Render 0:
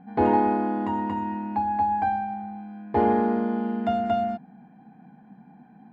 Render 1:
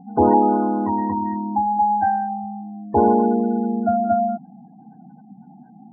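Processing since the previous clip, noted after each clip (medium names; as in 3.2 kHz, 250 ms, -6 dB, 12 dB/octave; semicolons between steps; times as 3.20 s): spectral gate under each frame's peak -20 dB strong; trim +5.5 dB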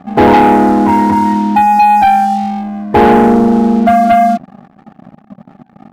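waveshaping leveller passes 3; trim +2.5 dB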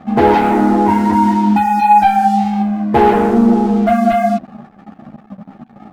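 compression, threshold -11 dBFS, peak gain reduction 6.5 dB; three-phase chorus; trim +4 dB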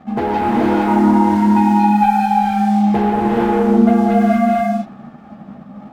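compression, threshold -11 dBFS, peak gain reduction 6 dB; gated-style reverb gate 490 ms rising, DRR -3.5 dB; trim -5 dB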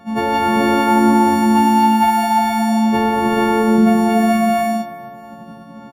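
partials quantised in pitch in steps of 4 st; feedback delay 312 ms, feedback 48%, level -18.5 dB; trim -1 dB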